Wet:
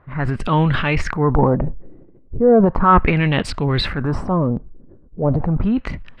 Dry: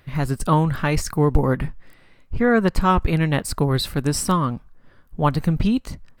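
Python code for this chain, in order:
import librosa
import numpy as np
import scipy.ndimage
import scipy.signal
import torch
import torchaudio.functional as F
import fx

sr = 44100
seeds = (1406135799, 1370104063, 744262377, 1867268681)

y = fx.filter_lfo_lowpass(x, sr, shape='sine', hz=0.36, low_hz=350.0, high_hz=3100.0, q=2.4)
y = fx.transient(y, sr, attack_db=-5, sustain_db=9)
y = y * 10.0 ** (1.5 / 20.0)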